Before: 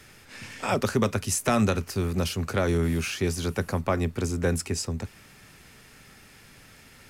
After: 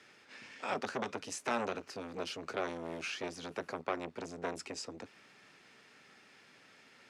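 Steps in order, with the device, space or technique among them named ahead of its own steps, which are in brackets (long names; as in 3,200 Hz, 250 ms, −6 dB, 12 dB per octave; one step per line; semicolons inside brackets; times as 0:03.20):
public-address speaker with an overloaded transformer (saturating transformer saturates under 1,100 Hz; band-pass filter 270–5,200 Hz)
level −6.5 dB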